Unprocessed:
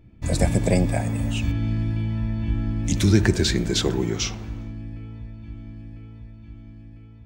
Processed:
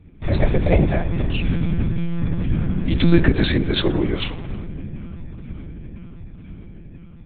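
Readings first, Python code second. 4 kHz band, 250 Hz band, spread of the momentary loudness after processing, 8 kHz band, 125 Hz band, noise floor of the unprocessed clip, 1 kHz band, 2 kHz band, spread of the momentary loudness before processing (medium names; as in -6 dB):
+0.5 dB, +3.0 dB, 22 LU, under -40 dB, +1.5 dB, -45 dBFS, +3.0 dB, +3.5 dB, 20 LU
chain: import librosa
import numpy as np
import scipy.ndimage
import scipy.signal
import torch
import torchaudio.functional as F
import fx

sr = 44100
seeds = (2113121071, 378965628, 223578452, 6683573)

y = fx.lpc_monotone(x, sr, seeds[0], pitch_hz=170.0, order=10)
y = y * librosa.db_to_amplitude(4.0)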